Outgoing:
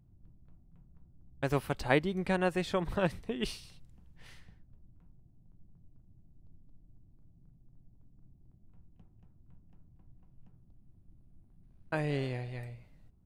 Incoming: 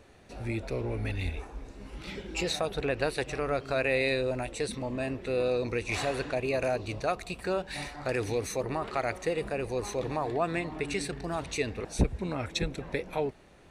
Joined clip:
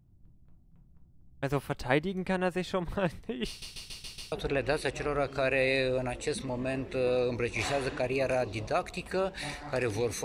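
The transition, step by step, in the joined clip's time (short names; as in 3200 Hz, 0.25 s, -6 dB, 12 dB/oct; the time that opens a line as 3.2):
outgoing
3.48 stutter in place 0.14 s, 6 plays
4.32 switch to incoming from 2.65 s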